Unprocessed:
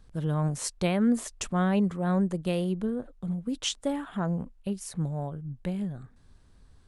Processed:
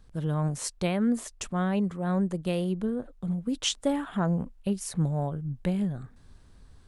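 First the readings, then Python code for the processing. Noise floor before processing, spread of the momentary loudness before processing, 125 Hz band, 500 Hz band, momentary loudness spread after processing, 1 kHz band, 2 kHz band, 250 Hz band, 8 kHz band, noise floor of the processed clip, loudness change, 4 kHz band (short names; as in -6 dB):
-58 dBFS, 9 LU, +1.0 dB, 0.0 dB, 6 LU, 0.0 dB, -0.5 dB, 0.0 dB, +0.5 dB, -55 dBFS, +0.5 dB, +1.5 dB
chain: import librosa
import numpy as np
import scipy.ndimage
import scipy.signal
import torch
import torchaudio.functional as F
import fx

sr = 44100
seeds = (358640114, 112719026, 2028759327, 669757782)

y = fx.rider(x, sr, range_db=10, speed_s=2.0)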